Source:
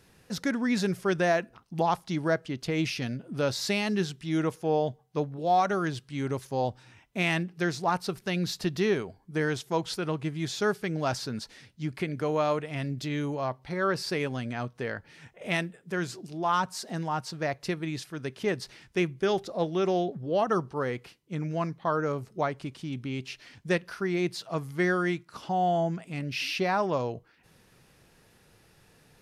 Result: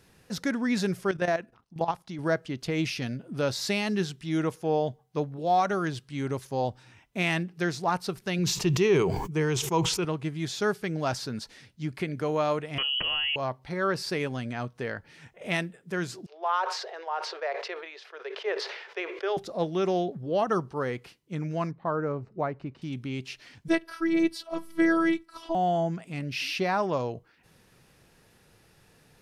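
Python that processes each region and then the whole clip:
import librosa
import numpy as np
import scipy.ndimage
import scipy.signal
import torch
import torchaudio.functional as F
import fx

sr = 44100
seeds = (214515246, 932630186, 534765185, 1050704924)

y = fx.chain(x, sr, fx.high_shelf(hz=5500.0, db=-4.5),
    fx.level_steps(step_db=12), at=(1.11, 2.19))
y = fx.chain(y, sr, fx.ripple_eq(per_octave=0.73, db=8),
    fx.sustainer(db_per_s=44.0), at=(8.38, 10.05))
y = fx.chain(y, sr, fx.freq_invert(carrier_hz=3100),
    fx.peak_eq(hz=1900.0, db=8.0, octaves=0.37),
    fx.env_flatten(amount_pct=100), at=(12.78, 13.36))
y = fx.chain(y, sr, fx.steep_highpass(hz=400.0, slope=72),
    fx.air_absorb(metres=240.0),
    fx.sustainer(db_per_s=52.0), at=(16.26, 19.37))
y = fx.chain(y, sr, fx.lowpass(hz=4400.0, slope=12),
    fx.high_shelf(hz=2200.0, db=-12.0),
    fx.notch(hz=3300.0, q=7.7), at=(21.71, 22.82))
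y = fx.chain(y, sr, fx.peak_eq(hz=6800.0, db=-7.0, octaves=0.31),
    fx.comb(ms=5.7, depth=0.84),
    fx.robotise(hz=329.0), at=(23.68, 25.55))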